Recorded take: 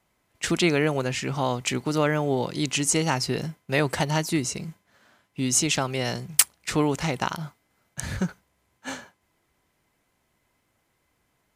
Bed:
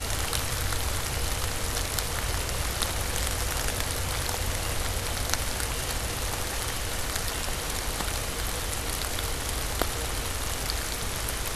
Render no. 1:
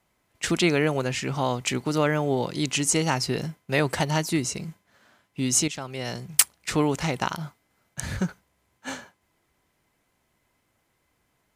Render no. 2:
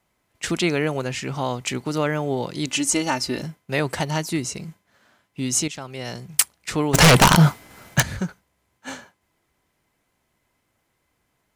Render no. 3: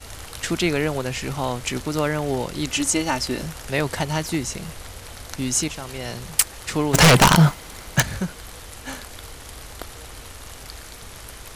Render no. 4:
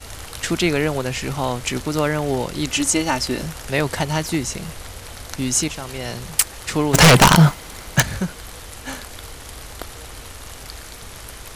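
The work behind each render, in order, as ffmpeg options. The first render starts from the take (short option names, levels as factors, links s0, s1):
-filter_complex "[0:a]asplit=2[s0][s1];[s0]atrim=end=5.68,asetpts=PTS-STARTPTS,afade=t=out:st=5.676:d=0.004:c=hsin:silence=0.211349[s2];[s1]atrim=start=5.68,asetpts=PTS-STARTPTS,afade=t=in:d=0.74:silence=0.211349[s3];[s2][s3]concat=n=2:v=0:a=1"
-filter_complex "[0:a]asettb=1/sr,asplit=3[s0][s1][s2];[s0]atrim=end=2.664[s3];[s1]atrim=start=2.66:end=3.42,asetpts=PTS-STARTPTS,afade=t=in:d=0.004:c=qsin,afade=t=out:st=0.756:d=0.004:c=qsin,aecho=1:1:3.4:0.65,atrim=end_sample=33516[s4];[s2]atrim=start=3.416[s5];[s3][s4]acrossfade=d=0.004:c1=hsin:c2=qsin[s6];[s6][s5]acrossfade=d=0.004:c1=qsin:c2=hsin,asplit=3[s7][s8][s9];[s7]afade=t=out:st=6.93:d=0.02[s10];[s8]aeval=exprs='0.422*sin(PI/2*8.91*val(0)/0.422)':c=same,afade=t=in:st=6.93:d=0.02,afade=t=out:st=8.01:d=0.02[s11];[s9]afade=t=in:st=8.01:d=0.02[s12];[s10][s11][s12]amix=inputs=3:normalize=0"
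-filter_complex "[1:a]volume=0.376[s0];[0:a][s0]amix=inputs=2:normalize=0"
-af "volume=1.33,alimiter=limit=0.891:level=0:latency=1"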